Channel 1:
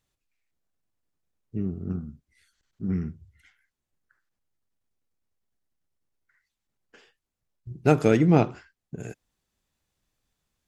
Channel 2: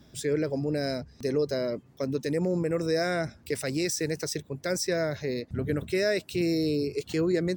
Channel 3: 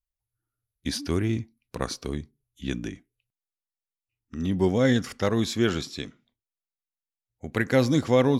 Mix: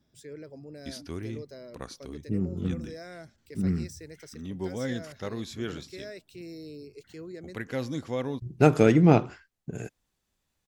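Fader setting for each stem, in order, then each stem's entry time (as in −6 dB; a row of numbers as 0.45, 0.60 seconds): +0.5, −16.0, −11.0 decibels; 0.75, 0.00, 0.00 seconds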